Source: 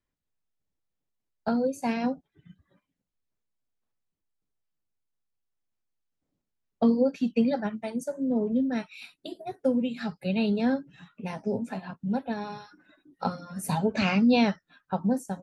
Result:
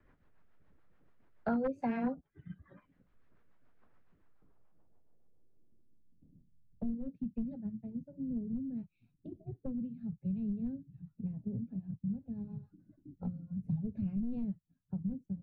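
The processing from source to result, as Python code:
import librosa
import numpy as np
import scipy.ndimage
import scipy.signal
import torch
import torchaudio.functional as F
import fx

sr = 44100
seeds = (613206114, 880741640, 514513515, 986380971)

y = np.minimum(x, 2.0 * 10.0 ** (-20.5 / 20.0) - x)
y = fx.filter_sweep_lowpass(y, sr, from_hz=1500.0, to_hz=120.0, start_s=4.2, end_s=6.77, q=1.4)
y = fx.rotary(y, sr, hz=7.0)
y = fx.band_squash(y, sr, depth_pct=70)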